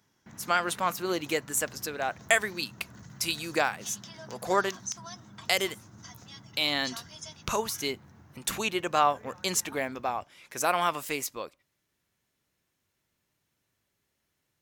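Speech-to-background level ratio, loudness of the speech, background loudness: 17.0 dB, -29.5 LUFS, -46.5 LUFS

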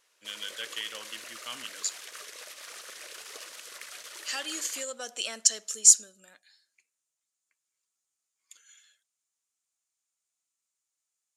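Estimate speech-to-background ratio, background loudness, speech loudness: 17.0 dB, -42.5 LUFS, -25.5 LUFS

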